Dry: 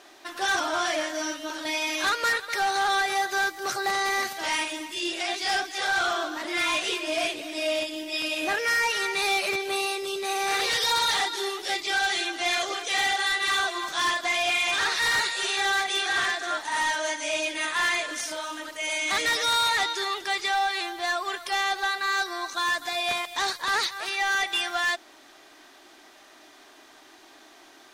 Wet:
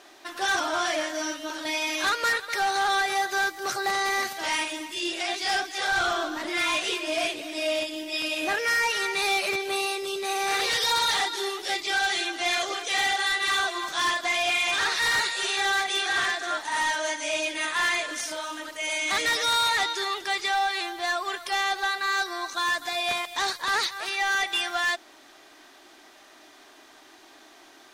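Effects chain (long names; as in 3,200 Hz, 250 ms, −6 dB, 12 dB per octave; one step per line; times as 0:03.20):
0:05.92–0:06.50: low-shelf EQ 170 Hz +10 dB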